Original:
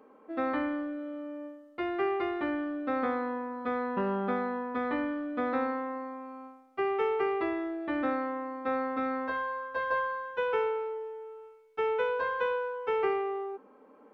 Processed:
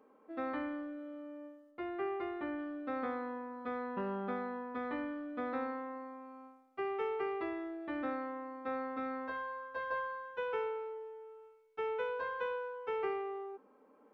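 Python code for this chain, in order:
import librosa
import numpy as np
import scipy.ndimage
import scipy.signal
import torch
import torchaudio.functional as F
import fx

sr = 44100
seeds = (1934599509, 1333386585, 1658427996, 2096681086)

y = fx.lowpass(x, sr, hz=fx.line((1.7, 2100.0), (2.58, 3100.0)), slope=6, at=(1.7, 2.58), fade=0.02)
y = y * librosa.db_to_amplitude(-7.5)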